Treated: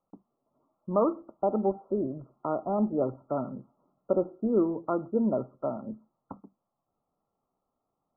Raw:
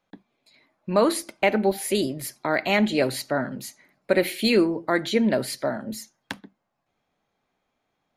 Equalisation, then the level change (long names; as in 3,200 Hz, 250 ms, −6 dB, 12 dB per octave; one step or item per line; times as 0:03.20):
linear-phase brick-wall low-pass 1,400 Hz
−5.0 dB